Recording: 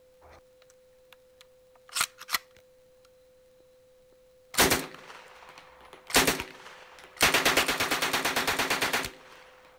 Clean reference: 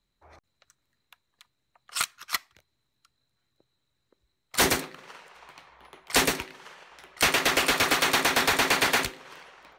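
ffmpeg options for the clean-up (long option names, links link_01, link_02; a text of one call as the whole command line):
ffmpeg -i in.wav -af "adeclick=threshold=4,bandreject=frequency=510:width=30,agate=range=-21dB:threshold=-51dB,asetnsamples=nb_out_samples=441:pad=0,asendcmd='7.63 volume volume 4.5dB',volume=0dB" out.wav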